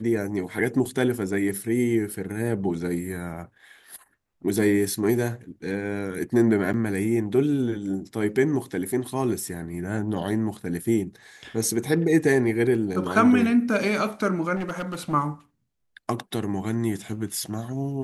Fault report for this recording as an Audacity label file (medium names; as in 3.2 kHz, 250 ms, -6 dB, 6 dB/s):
0.850000	0.850000	dropout 3.9 ms
6.730000	6.740000	dropout 8.7 ms
14.550000	15.140000	clipped -25.5 dBFS